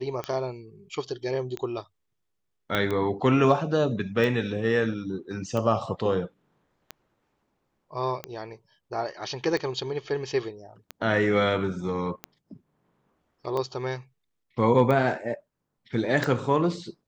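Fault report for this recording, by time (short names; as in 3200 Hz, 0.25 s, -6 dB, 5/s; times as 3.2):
tick 45 rpm -17 dBFS
2.75 pop -12 dBFS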